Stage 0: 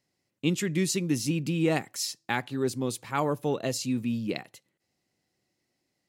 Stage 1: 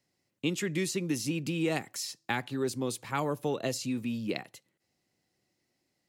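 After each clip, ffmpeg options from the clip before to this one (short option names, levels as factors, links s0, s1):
-filter_complex "[0:a]acrossover=split=310|2400[s0][s1][s2];[s0]acompressor=threshold=0.0178:ratio=4[s3];[s1]acompressor=threshold=0.0355:ratio=4[s4];[s2]acompressor=threshold=0.0178:ratio=4[s5];[s3][s4][s5]amix=inputs=3:normalize=0"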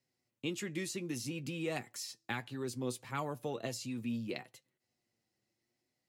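-af "flanger=delay=7.7:depth=1.4:regen=47:speed=0.65:shape=triangular,volume=0.75"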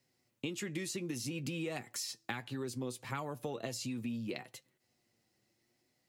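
-af "acompressor=threshold=0.00708:ratio=6,volume=2.24"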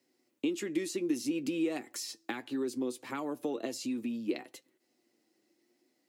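-af "highpass=f=300:t=q:w=3.5"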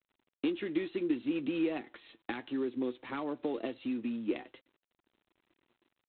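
-ar 8000 -c:a adpcm_g726 -b:a 24k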